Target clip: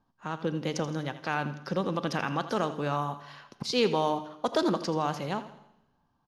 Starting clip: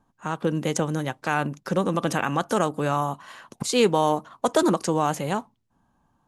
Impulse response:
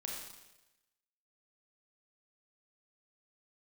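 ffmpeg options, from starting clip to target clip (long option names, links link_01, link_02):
-filter_complex "[0:a]highshelf=frequency=6300:width_type=q:width=3:gain=-8,aecho=1:1:82|164|246|328:0.2|0.0858|0.0369|0.0159,asplit=2[link_01][link_02];[1:a]atrim=start_sample=2205[link_03];[link_02][link_03]afir=irnorm=-1:irlink=0,volume=-12dB[link_04];[link_01][link_04]amix=inputs=2:normalize=0,volume=-7.5dB"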